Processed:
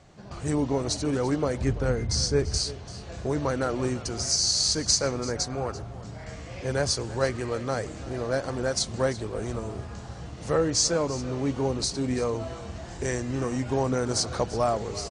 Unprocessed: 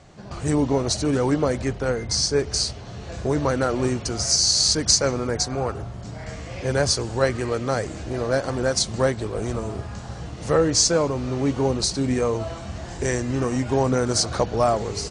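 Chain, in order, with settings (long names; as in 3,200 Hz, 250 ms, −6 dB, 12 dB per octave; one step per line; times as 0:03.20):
0:01.61–0:02.58: low-shelf EQ 180 Hz +11 dB
on a send: single-tap delay 339 ms −17 dB
on the sum: level −5 dB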